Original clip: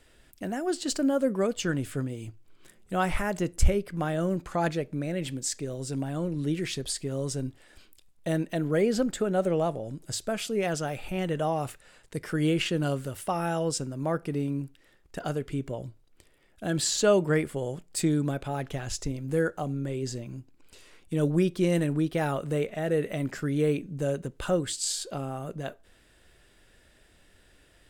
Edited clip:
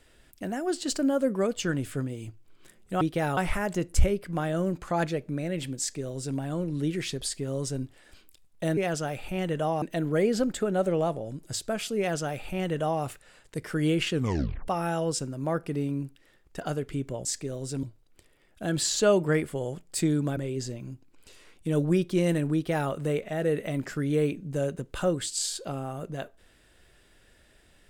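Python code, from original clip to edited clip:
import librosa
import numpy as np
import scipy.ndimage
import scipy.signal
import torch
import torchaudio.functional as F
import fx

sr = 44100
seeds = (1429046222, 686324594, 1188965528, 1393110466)

y = fx.edit(x, sr, fx.duplicate(start_s=5.43, length_s=0.58, to_s=15.84),
    fx.duplicate(start_s=10.57, length_s=1.05, to_s=8.41),
    fx.tape_stop(start_s=12.72, length_s=0.55),
    fx.cut(start_s=18.38, length_s=1.45),
    fx.duplicate(start_s=22.0, length_s=0.36, to_s=3.01), tone=tone)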